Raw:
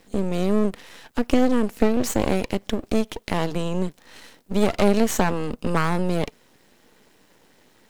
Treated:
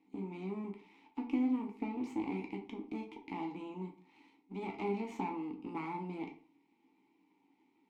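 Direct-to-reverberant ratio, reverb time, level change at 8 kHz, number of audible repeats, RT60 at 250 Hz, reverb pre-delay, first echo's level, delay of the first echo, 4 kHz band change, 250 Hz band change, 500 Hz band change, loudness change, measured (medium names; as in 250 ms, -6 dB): 2.0 dB, 0.45 s, under -30 dB, no echo, 0.45 s, 9 ms, no echo, no echo, -24.5 dB, -14.5 dB, -20.0 dB, -16.0 dB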